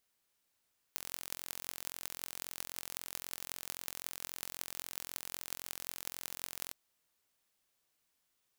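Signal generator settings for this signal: pulse train 43.8 per s, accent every 8, -10 dBFS 5.77 s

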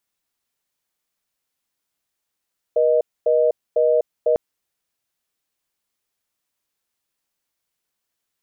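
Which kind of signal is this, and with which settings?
call progress tone reorder tone, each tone -16.5 dBFS 1.60 s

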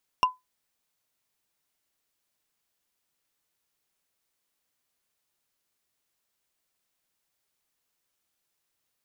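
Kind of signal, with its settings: wood hit, lowest mode 1.01 kHz, decay 0.18 s, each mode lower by 6.5 dB, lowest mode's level -13.5 dB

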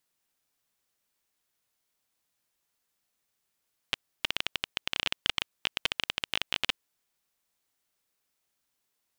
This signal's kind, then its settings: random clicks 18 per s -9 dBFS 2.86 s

